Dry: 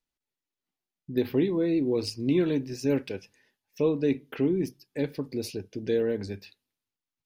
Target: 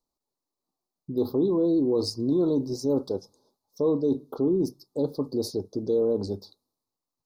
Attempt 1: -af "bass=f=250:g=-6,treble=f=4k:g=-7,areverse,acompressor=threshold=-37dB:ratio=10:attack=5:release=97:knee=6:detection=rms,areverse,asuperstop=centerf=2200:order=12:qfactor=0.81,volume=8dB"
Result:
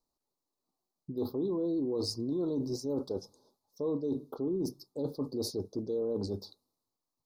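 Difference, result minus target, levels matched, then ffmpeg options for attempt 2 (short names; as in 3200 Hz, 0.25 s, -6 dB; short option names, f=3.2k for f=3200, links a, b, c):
compressor: peak gain reduction +9.5 dB
-af "bass=f=250:g=-6,treble=f=4k:g=-7,areverse,acompressor=threshold=-26.5dB:ratio=10:attack=5:release=97:knee=6:detection=rms,areverse,asuperstop=centerf=2200:order=12:qfactor=0.81,volume=8dB"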